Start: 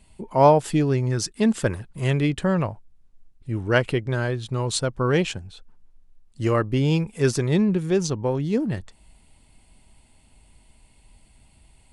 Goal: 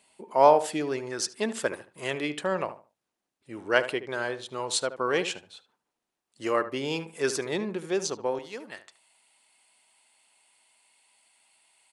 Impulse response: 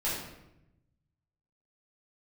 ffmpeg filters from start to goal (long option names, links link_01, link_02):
-filter_complex "[0:a]asetnsamples=nb_out_samples=441:pad=0,asendcmd='8.39 highpass f 920',highpass=440,asplit=2[link_01][link_02];[link_02]adelay=74,lowpass=frequency=2000:poles=1,volume=-12dB,asplit=2[link_03][link_04];[link_04]adelay=74,lowpass=frequency=2000:poles=1,volume=0.25,asplit=2[link_05][link_06];[link_06]adelay=74,lowpass=frequency=2000:poles=1,volume=0.25[link_07];[link_01][link_03][link_05][link_07]amix=inputs=4:normalize=0,volume=-1.5dB"